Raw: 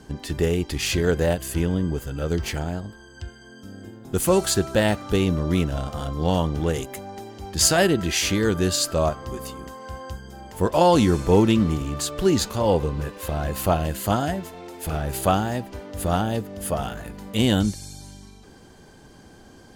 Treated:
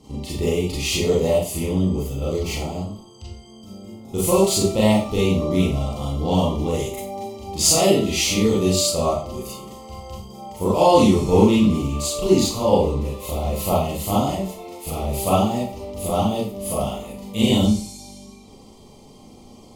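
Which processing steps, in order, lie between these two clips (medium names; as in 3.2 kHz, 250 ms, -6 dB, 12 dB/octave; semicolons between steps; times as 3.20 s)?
Butterworth band-stop 1.6 kHz, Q 1.8; Schroeder reverb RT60 0.4 s, combs from 29 ms, DRR -6.5 dB; trim -4.5 dB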